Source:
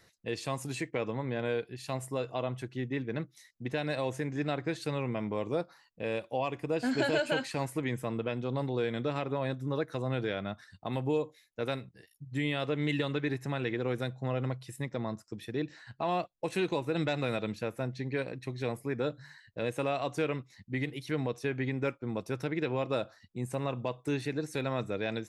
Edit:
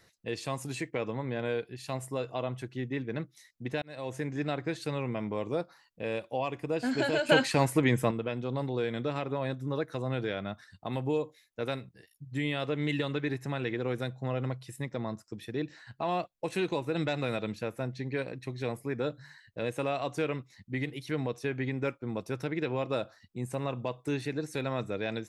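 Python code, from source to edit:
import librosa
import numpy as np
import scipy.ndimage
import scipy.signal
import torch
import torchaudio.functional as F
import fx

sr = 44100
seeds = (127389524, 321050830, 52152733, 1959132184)

y = fx.edit(x, sr, fx.fade_in_span(start_s=3.82, length_s=0.39),
    fx.clip_gain(start_s=7.29, length_s=0.82, db=8.0), tone=tone)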